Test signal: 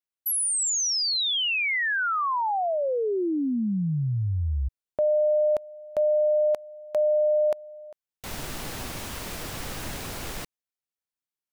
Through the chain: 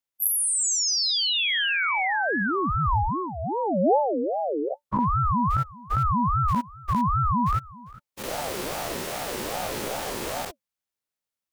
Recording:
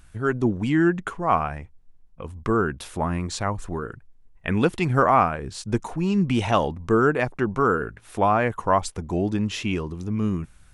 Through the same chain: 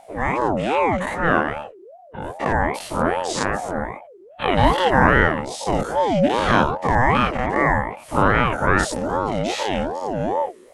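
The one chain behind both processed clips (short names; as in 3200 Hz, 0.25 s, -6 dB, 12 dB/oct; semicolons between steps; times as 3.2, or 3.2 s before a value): spectral dilation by 0.12 s; thirty-one-band EQ 160 Hz +9 dB, 315 Hz -9 dB, 500 Hz +5 dB; ring modulator with a swept carrier 550 Hz, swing 35%, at 2.5 Hz; gain +1 dB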